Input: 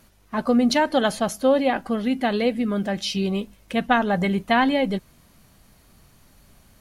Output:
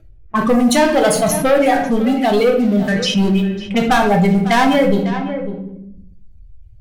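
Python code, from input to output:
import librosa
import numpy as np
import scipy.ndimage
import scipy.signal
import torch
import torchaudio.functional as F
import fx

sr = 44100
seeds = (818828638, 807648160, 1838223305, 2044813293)

p1 = fx.bin_expand(x, sr, power=1.5)
p2 = fx.env_phaser(p1, sr, low_hz=180.0, high_hz=4900.0, full_db=-18.5)
p3 = fx.dereverb_blind(p2, sr, rt60_s=1.9)
p4 = fx.leveller(p3, sr, passes=3)
p5 = p4 + fx.echo_single(p4, sr, ms=550, db=-19.0, dry=0)
p6 = fx.env_lowpass(p5, sr, base_hz=1100.0, full_db=-17.0)
p7 = fx.high_shelf(p6, sr, hz=7600.0, db=8.0)
p8 = fx.room_shoebox(p7, sr, seeds[0], volume_m3=79.0, walls='mixed', distance_m=0.59)
p9 = fx.env_flatten(p8, sr, amount_pct=50)
y = p9 * 10.0 ** (-1.0 / 20.0)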